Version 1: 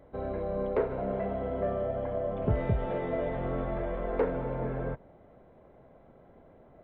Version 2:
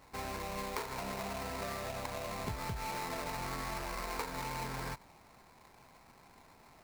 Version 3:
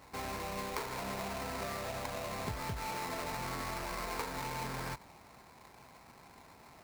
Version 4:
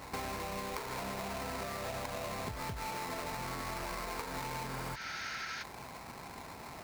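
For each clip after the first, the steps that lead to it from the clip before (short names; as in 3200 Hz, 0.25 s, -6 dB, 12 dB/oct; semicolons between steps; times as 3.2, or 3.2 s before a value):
resonant low shelf 740 Hz -8 dB, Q 3; sample-rate reducer 3200 Hz, jitter 20%; compressor, threshold -38 dBFS, peak gain reduction 9.5 dB; gain +2.5 dB
HPF 41 Hz; in parallel at -7 dB: wrapped overs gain 38.5 dB
spectral repair 4.75–5.6, 1300–6700 Hz before; compressor 12:1, threshold -46 dBFS, peak gain reduction 13.5 dB; gain +9.5 dB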